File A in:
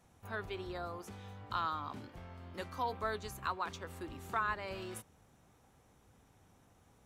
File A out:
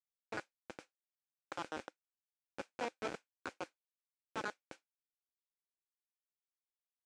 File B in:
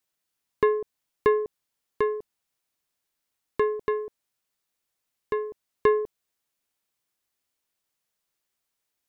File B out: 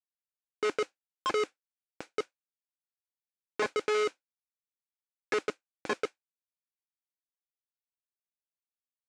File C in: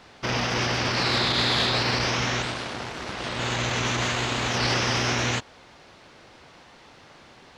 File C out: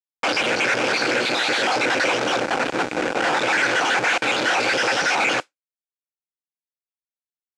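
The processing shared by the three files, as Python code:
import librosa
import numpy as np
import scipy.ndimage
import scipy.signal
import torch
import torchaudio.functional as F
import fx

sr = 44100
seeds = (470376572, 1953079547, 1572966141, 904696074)

p1 = fx.spec_dropout(x, sr, seeds[0], share_pct=56)
p2 = fx.dynamic_eq(p1, sr, hz=1100.0, q=2.4, threshold_db=-48.0, ratio=4.0, max_db=-6)
p3 = fx.rider(p2, sr, range_db=3, speed_s=2.0)
p4 = p2 + F.gain(torch.from_numpy(p3), 2.5).numpy()
p5 = fx.quant_dither(p4, sr, seeds[1], bits=8, dither='none')
p6 = fx.schmitt(p5, sr, flips_db=-27.5)
p7 = fx.mod_noise(p6, sr, seeds[2], snr_db=17)
y = fx.cabinet(p7, sr, low_hz=260.0, low_slope=12, high_hz=7500.0, hz=(310.0, 520.0, 800.0, 1500.0, 2400.0), db=(7, 9, 6, 10, 8))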